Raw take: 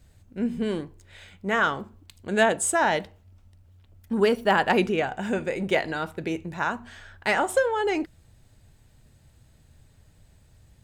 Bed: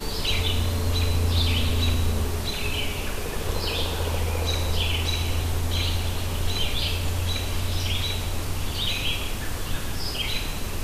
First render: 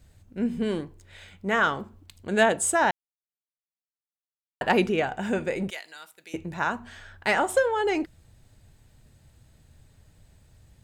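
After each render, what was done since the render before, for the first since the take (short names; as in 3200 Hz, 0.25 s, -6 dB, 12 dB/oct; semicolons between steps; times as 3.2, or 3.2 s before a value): 2.91–4.61 mute; 5.7–6.34 differentiator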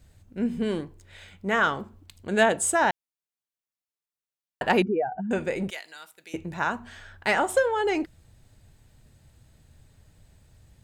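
4.82–5.31 spectral contrast raised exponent 2.5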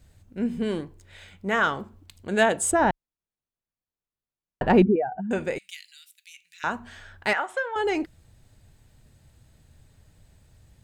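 2.71–4.96 tilt -3.5 dB/oct; 5.58–6.64 inverse Chebyshev high-pass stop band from 930 Hz, stop band 50 dB; 7.33–7.76 band-pass 1600 Hz, Q 1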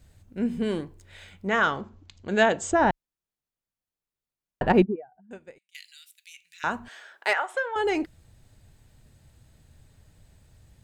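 1.47–2.89 steep low-pass 7300 Hz 72 dB/oct; 4.72–5.75 upward expander 2.5:1, over -30 dBFS; 6.88–7.55 HPF 400 Hz 24 dB/oct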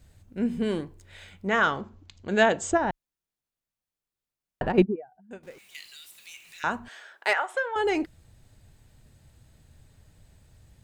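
2.77–4.78 compressor, threshold -22 dBFS; 5.43–6.63 zero-crossing step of -49 dBFS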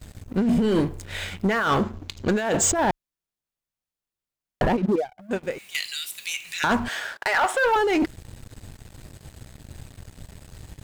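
negative-ratio compressor -30 dBFS, ratio -1; sample leveller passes 3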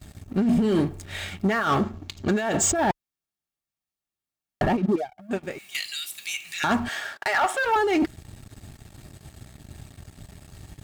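notch comb 500 Hz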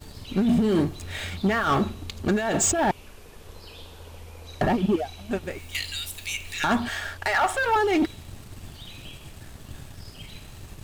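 add bed -17.5 dB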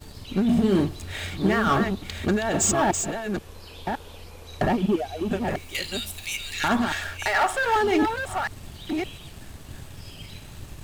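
reverse delay 0.565 s, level -5.5 dB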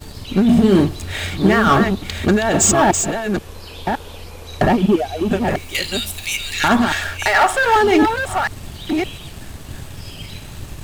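gain +8 dB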